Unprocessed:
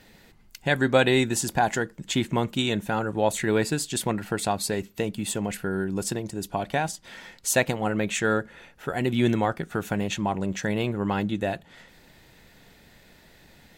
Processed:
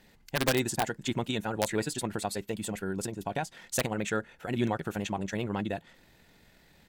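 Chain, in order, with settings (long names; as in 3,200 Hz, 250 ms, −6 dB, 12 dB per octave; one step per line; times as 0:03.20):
wrap-around overflow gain 11 dB
tempo change 2×
level −5.5 dB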